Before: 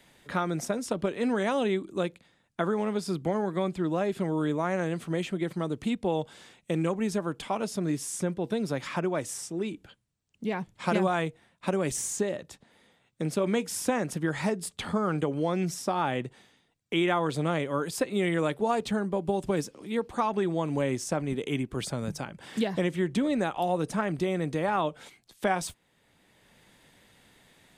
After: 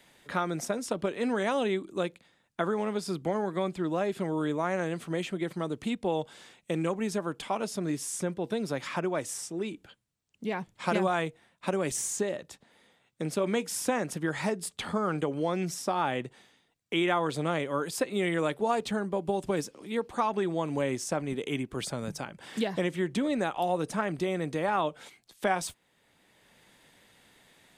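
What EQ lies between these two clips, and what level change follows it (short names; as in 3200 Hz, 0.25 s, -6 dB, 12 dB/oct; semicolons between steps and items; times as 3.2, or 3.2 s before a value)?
low shelf 210 Hz -6 dB; 0.0 dB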